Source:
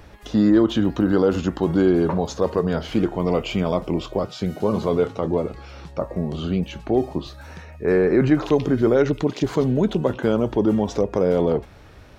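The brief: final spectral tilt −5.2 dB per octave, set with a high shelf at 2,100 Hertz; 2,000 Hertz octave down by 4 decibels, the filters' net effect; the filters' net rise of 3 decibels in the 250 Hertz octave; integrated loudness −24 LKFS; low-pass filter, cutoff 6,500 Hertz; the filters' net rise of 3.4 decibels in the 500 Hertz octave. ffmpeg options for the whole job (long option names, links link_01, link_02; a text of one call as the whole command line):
ffmpeg -i in.wav -af "lowpass=6500,equalizer=frequency=250:width_type=o:gain=3,equalizer=frequency=500:width_type=o:gain=3.5,equalizer=frequency=2000:width_type=o:gain=-3.5,highshelf=frequency=2100:gain=-4,volume=-5.5dB" out.wav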